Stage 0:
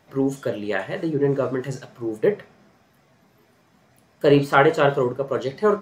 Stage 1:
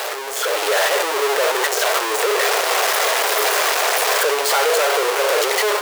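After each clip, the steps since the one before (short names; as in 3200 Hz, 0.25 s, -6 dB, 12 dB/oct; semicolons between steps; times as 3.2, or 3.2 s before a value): infinite clipping; AGC gain up to 7.5 dB; elliptic high-pass 430 Hz, stop band 50 dB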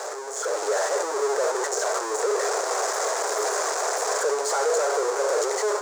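EQ curve 260 Hz 0 dB, 390 Hz +5 dB, 1500 Hz 0 dB, 2900 Hz -15 dB, 7100 Hz +8 dB, 12000 Hz -15 dB; gain -8.5 dB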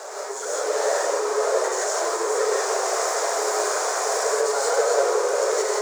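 flange 1.1 Hz, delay 2.7 ms, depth 6.8 ms, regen +70%; non-linear reverb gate 0.2 s rising, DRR -5 dB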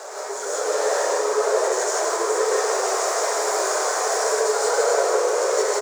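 echo 0.157 s -4.5 dB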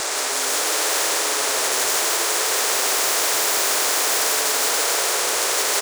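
spectral compressor 4:1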